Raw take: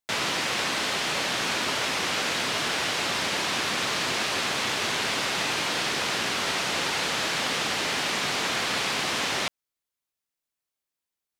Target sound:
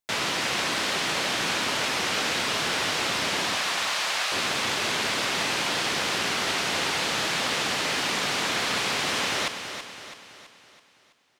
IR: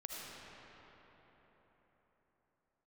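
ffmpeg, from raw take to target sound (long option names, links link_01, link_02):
-filter_complex "[0:a]asettb=1/sr,asplit=3[link_01][link_02][link_03];[link_01]atrim=end=3.554[link_04];[link_02]atrim=start=3.55:end=4.32,asetpts=PTS-STARTPTS,afade=type=in:duration=0.004:curve=qsin,afade=type=out:start_time=0.766:duration=0.004:curve=qsin,highpass=frequency=590:width=0.5412,highpass=frequency=590:width=1.3066[link_05];[link_03]atrim=start=4.316[link_06];[link_04][link_05]acrossfade=duration=0.004:curve1=hsin:curve2=qsin[link_07];[link_07][link_06]acrossfade=duration=0.004:curve1=qsin:curve2=hsin,aecho=1:1:329|658|987|1316|1645|1974:0.355|0.174|0.0852|0.0417|0.0205|0.01"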